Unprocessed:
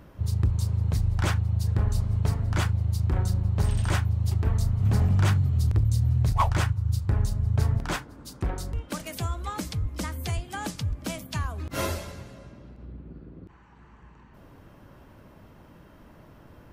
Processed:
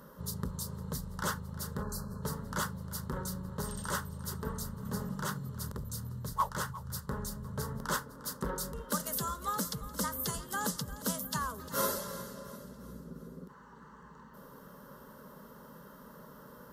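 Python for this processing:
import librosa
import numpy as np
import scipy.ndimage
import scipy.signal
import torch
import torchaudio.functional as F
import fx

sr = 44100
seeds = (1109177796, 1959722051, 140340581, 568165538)

p1 = fx.fixed_phaser(x, sr, hz=480.0, stages=8)
p2 = fx.rider(p1, sr, range_db=5, speed_s=0.5)
p3 = p2 + fx.echo_feedback(p2, sr, ms=353, feedback_pct=49, wet_db=-15.5, dry=0)
p4 = fx.spec_box(p3, sr, start_s=1.83, length_s=0.39, low_hz=1800.0, high_hz=3900.0, gain_db=-28)
p5 = fx.highpass(p4, sr, hz=210.0, slope=6)
y = fx.peak_eq(p5, sr, hz=13000.0, db=9.0, octaves=0.52)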